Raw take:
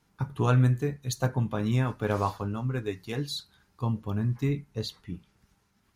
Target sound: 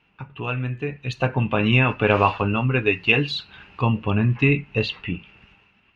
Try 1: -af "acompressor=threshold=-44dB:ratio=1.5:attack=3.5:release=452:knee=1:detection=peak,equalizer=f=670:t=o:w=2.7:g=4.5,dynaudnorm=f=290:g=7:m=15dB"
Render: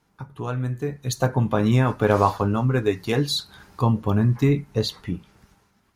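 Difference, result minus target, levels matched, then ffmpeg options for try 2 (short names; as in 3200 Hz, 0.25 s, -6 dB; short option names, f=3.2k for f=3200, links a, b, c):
2000 Hz band -9.0 dB
-af "acompressor=threshold=-44dB:ratio=1.5:attack=3.5:release=452:knee=1:detection=peak,lowpass=f=2.7k:t=q:w=14,equalizer=f=670:t=o:w=2.7:g=4.5,dynaudnorm=f=290:g=7:m=15dB"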